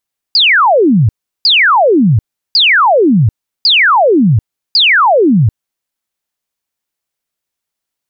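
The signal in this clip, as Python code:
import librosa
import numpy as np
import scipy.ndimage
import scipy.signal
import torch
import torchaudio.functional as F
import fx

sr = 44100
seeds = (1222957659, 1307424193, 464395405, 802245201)

y = fx.laser_zaps(sr, level_db=-5, start_hz=5000.0, end_hz=96.0, length_s=0.74, wave='sine', shots=5, gap_s=0.36)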